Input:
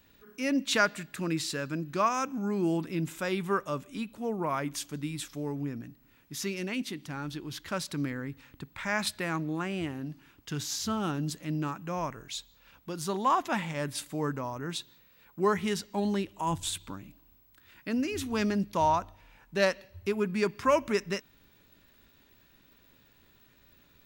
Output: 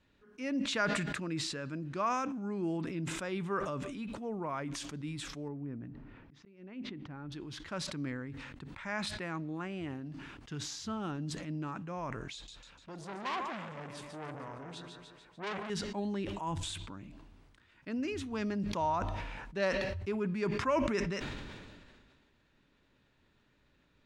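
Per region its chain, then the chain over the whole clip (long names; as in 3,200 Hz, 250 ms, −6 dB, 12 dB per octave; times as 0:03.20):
0:05.48–0:07.32: volume swells 466 ms + head-to-tape spacing loss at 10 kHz 36 dB
0:12.33–0:15.70: echo with a time of its own for lows and highs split 370 Hz, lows 106 ms, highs 148 ms, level −8 dB + saturating transformer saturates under 3,400 Hz
whole clip: low-pass filter 9,900 Hz 24 dB per octave; high-shelf EQ 5,100 Hz −11 dB; level that may fall only so fast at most 30 dB per second; level −6.5 dB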